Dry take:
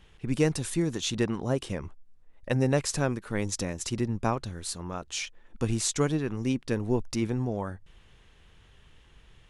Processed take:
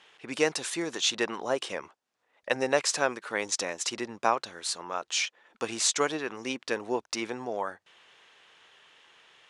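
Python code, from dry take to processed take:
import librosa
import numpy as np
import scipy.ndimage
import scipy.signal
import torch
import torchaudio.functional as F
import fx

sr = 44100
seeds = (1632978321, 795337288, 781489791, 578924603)

y = fx.bandpass_edges(x, sr, low_hz=600.0, high_hz=7200.0)
y = y * librosa.db_to_amplitude(6.0)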